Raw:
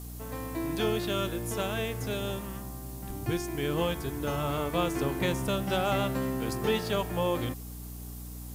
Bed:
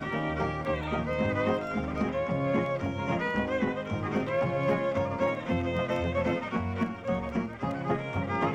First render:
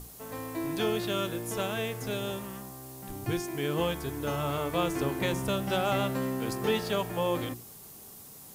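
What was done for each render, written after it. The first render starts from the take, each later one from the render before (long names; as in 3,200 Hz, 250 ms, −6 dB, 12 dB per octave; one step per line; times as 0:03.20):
mains-hum notches 60/120/180/240/300/360 Hz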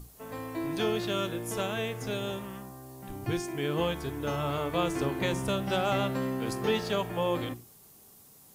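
noise reduction from a noise print 7 dB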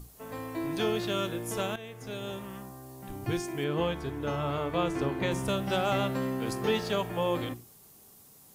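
0:01.76–0:02.61: fade in, from −13.5 dB
0:03.64–0:05.32: high-shelf EQ 5,700 Hz −10.5 dB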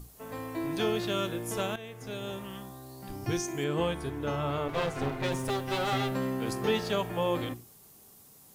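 0:02.44–0:04.08: parametric band 2,900 Hz → 10,000 Hz +13.5 dB 0.22 octaves
0:04.68–0:06.11: lower of the sound and its delayed copy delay 7.6 ms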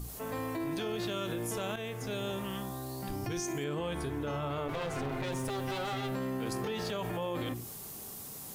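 brickwall limiter −28 dBFS, peak gain reduction 11 dB
envelope flattener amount 50%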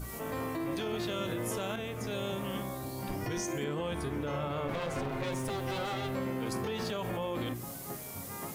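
mix in bed −14.5 dB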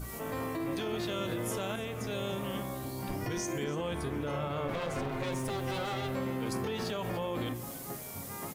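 single-tap delay 291 ms −16.5 dB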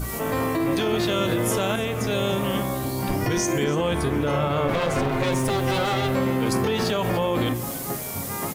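level +11.5 dB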